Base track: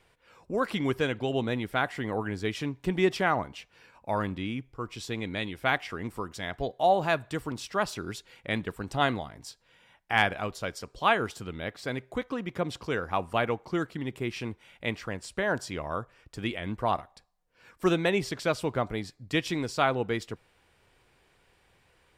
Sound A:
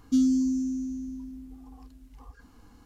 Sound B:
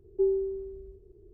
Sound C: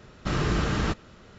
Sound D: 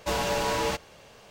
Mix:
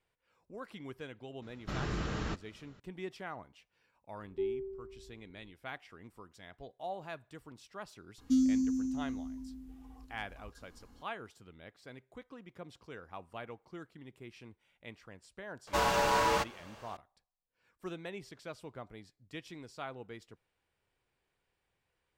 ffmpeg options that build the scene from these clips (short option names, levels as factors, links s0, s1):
-filter_complex "[0:a]volume=0.133[s0];[4:a]equalizer=f=1200:w=1.1:g=7.5[s1];[3:a]atrim=end=1.38,asetpts=PTS-STARTPTS,volume=0.299,afade=t=in:d=0.004:c=hsin,afade=t=out:st=1.376:d=0.004:c=hsin,adelay=1420[s2];[2:a]atrim=end=1.33,asetpts=PTS-STARTPTS,volume=0.335,afade=t=in:d=0.004:c=hsin,afade=t=out:st=1.326:d=0.004:c=hsin,adelay=4190[s3];[1:a]atrim=end=2.85,asetpts=PTS-STARTPTS,volume=0.562,afade=t=in:d=0.004:c=hsin,afade=t=out:st=2.846:d=0.004:c=hsin,adelay=360738S[s4];[s1]atrim=end=1.3,asetpts=PTS-STARTPTS,volume=0.596,afade=t=in:d=0.004:c=hsin,afade=t=out:st=1.296:d=0.004:c=hsin,adelay=15670[s5];[s0][s2][s3][s4][s5]amix=inputs=5:normalize=0"